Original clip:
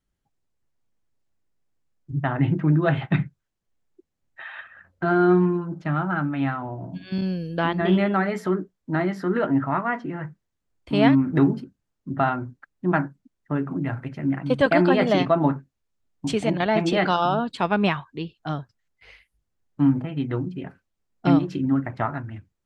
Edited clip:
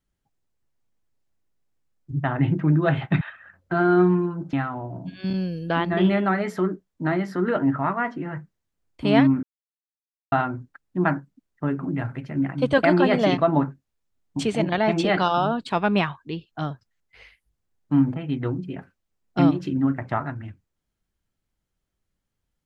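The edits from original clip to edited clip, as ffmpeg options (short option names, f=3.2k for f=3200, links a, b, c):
-filter_complex "[0:a]asplit=5[a][b][c][d][e];[a]atrim=end=3.212[f];[b]atrim=start=4.518:end=5.842[g];[c]atrim=start=6.408:end=11.31,asetpts=PTS-STARTPTS,afade=t=out:st=4.898:d=0.004:c=hsin[h];[d]atrim=start=11.31:end=12.2,asetpts=PTS-STARTPTS,volume=0[i];[e]atrim=start=12.2,asetpts=PTS-STARTPTS,afade=t=in:d=0.004:c=hsin[j];[f][g]acrossfade=d=0.004:c1=hsin:c2=hsin[k];[h][i][j]concat=n=3:v=0:a=1[l];[k][l]acrossfade=d=0.004:c1=hsin:c2=hsin"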